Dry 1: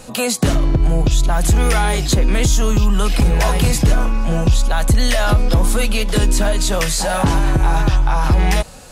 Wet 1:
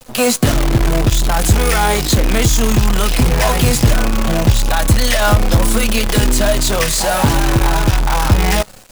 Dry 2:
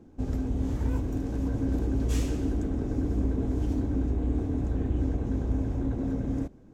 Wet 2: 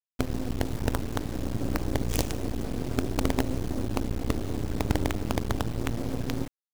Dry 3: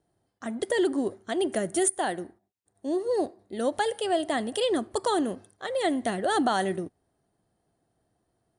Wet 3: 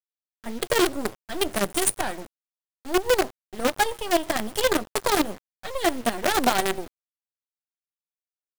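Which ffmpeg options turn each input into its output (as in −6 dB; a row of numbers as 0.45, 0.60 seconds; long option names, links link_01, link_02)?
-af "flanger=delay=7.7:depth=2.3:regen=43:speed=0.3:shape=triangular,agate=range=-33dB:threshold=-37dB:ratio=3:detection=peak,acrusher=bits=5:dc=4:mix=0:aa=0.000001,volume=6.5dB"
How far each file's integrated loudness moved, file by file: +2.5, −1.0, +3.0 LU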